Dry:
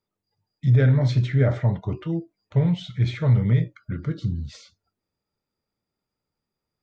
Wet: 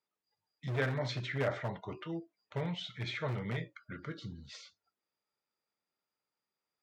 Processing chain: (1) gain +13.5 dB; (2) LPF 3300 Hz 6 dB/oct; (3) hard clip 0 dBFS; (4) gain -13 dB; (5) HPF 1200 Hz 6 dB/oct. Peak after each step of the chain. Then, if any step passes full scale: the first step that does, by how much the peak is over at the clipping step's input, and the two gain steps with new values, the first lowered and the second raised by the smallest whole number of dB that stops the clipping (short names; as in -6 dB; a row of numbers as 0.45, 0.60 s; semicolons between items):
+3.5, +3.5, 0.0, -13.0, -19.0 dBFS; step 1, 3.5 dB; step 1 +9.5 dB, step 4 -9 dB